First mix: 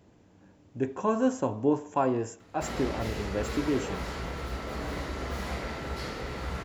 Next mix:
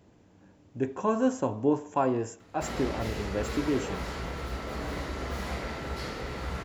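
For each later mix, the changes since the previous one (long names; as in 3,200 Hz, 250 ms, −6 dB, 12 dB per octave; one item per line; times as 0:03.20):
nothing changed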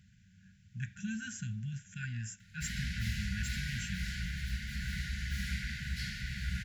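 master: add linear-phase brick-wall band-stop 220–1,400 Hz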